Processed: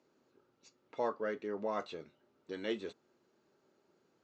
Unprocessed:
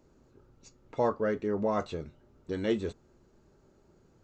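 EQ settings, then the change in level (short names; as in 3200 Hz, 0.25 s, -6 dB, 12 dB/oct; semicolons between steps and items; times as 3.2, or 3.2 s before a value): BPF 250–4000 Hz; high shelf 2300 Hz +10.5 dB; -7.5 dB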